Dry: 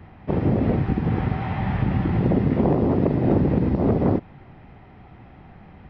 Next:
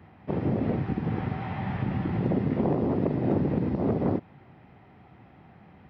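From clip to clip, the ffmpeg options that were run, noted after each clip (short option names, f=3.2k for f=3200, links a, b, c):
-af "highpass=96,volume=-5.5dB"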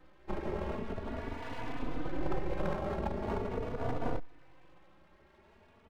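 -filter_complex "[0:a]afftfilt=real='re*pow(10,7/40*sin(2*PI*(0.63*log(max(b,1)*sr/1024/100)/log(2)-(1)*(pts-256)/sr)))':imag='im*pow(10,7/40*sin(2*PI*(0.63*log(max(b,1)*sr/1024/100)/log(2)-(1)*(pts-256)/sr)))':win_size=1024:overlap=0.75,aeval=exprs='abs(val(0))':c=same,asplit=2[a][b];[b]adelay=3.4,afreqshift=0.42[c];[a][c]amix=inputs=2:normalize=1,volume=-3dB"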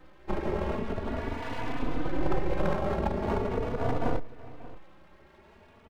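-filter_complex "[0:a]asplit=2[a][b];[b]adelay=583.1,volume=-18dB,highshelf=f=4k:g=-13.1[c];[a][c]amix=inputs=2:normalize=0,volume=6dB"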